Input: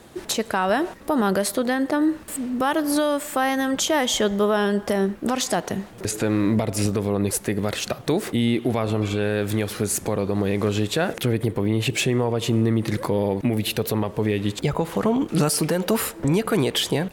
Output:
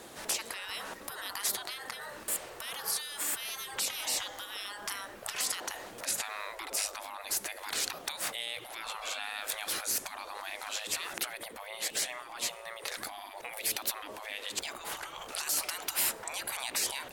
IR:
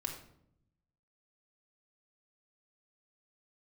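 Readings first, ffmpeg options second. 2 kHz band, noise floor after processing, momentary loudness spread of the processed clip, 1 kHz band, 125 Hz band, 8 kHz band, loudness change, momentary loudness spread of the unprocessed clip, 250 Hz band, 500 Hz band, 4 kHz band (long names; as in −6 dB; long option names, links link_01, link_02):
−8.5 dB, −48 dBFS, 9 LU, −13.5 dB, −36.5 dB, −3.5 dB, −11.5 dB, 4 LU, −32.5 dB, −23.0 dB, −6.5 dB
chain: -af "alimiter=limit=-15dB:level=0:latency=1:release=148,afftfilt=real='re*lt(hypot(re,im),0.0631)':imag='im*lt(hypot(re,im),0.0631)':win_size=1024:overlap=0.75,bass=frequency=250:gain=-12,treble=frequency=4000:gain=3"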